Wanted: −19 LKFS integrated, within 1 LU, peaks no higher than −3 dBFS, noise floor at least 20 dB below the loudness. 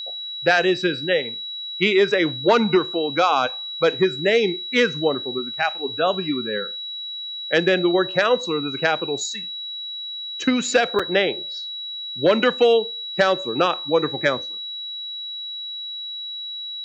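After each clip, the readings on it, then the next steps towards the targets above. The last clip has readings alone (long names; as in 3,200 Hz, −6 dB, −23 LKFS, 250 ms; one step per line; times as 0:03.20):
number of dropouts 1; longest dropout 5.3 ms; interfering tone 3,900 Hz; level of the tone −29 dBFS; integrated loudness −21.5 LKFS; sample peak −6.5 dBFS; target loudness −19.0 LKFS
→ repair the gap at 0:10.99, 5.3 ms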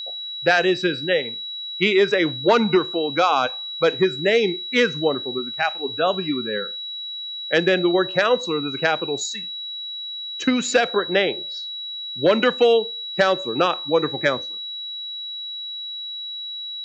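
number of dropouts 0; interfering tone 3,900 Hz; level of the tone −29 dBFS
→ notch filter 3,900 Hz, Q 30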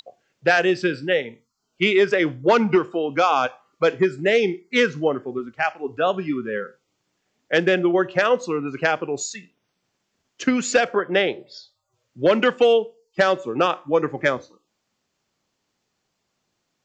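interfering tone none found; integrated loudness −21.0 LKFS; sample peak −7.0 dBFS; target loudness −19.0 LKFS
→ level +2 dB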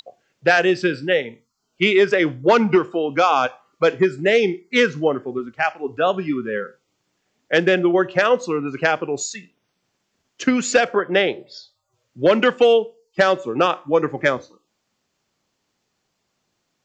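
integrated loudness −19.0 LKFS; sample peak −5.0 dBFS; background noise floor −74 dBFS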